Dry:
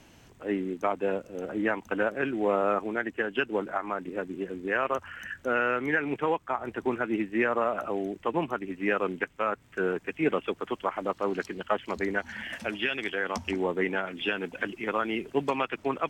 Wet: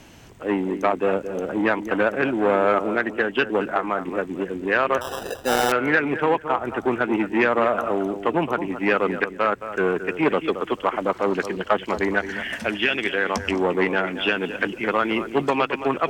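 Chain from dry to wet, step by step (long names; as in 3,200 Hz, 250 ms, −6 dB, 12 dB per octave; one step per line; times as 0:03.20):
tape delay 221 ms, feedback 21%, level −10.5 dB, low-pass 2,100 Hz
0:05.01–0:05.72: sample-rate reduction 2,200 Hz, jitter 0%
saturating transformer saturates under 790 Hz
level +8 dB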